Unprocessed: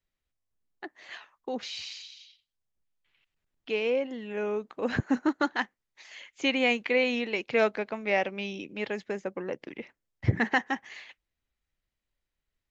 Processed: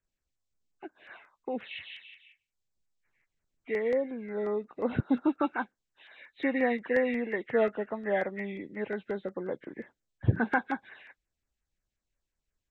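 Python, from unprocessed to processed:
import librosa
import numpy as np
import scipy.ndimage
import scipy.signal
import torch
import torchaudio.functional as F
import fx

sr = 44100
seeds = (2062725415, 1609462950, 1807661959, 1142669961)

y = fx.freq_compress(x, sr, knee_hz=1200.0, ratio=1.5)
y = fx.filter_lfo_notch(y, sr, shape='saw_down', hz=5.6, low_hz=780.0, high_hz=4600.0, q=1.0)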